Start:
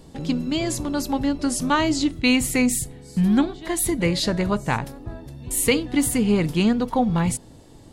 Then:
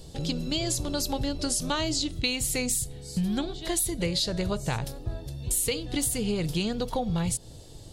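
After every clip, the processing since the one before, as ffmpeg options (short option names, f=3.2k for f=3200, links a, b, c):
-af "equalizer=f=250:t=o:w=1:g=-12,equalizer=f=1k:t=o:w=1:g=-9,equalizer=f=2k:t=o:w=1:g=-8,equalizer=f=4k:t=o:w=1:g=4,acompressor=threshold=-29dB:ratio=6,volume=4.5dB"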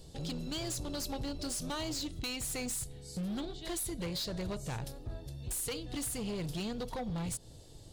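-af "asoftclip=type=hard:threshold=-26.5dB,volume=-7dB"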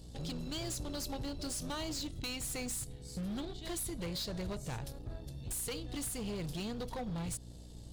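-af "aeval=exprs='val(0)+0.00398*(sin(2*PI*60*n/s)+sin(2*PI*2*60*n/s)/2+sin(2*PI*3*60*n/s)/3+sin(2*PI*4*60*n/s)/4+sin(2*PI*5*60*n/s)/5)':c=same,aeval=exprs='0.0251*(cos(1*acos(clip(val(0)/0.0251,-1,1)))-cos(1*PI/2))+0.00141*(cos(6*acos(clip(val(0)/0.0251,-1,1)))-cos(6*PI/2))':c=same,volume=-2dB"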